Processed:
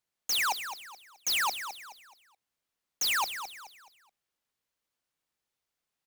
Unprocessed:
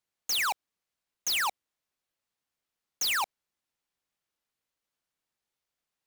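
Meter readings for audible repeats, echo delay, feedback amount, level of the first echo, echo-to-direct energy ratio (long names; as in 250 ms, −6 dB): 3, 213 ms, 35%, −10.0 dB, −9.5 dB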